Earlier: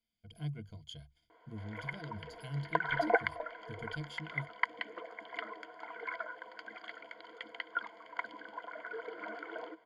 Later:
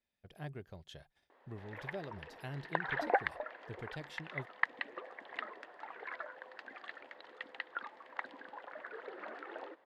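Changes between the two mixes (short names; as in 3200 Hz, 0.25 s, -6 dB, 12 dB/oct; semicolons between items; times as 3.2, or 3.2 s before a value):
speech: add band shelf 830 Hz +8.5 dB 2.8 oct; master: remove ripple EQ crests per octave 1.8, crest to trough 17 dB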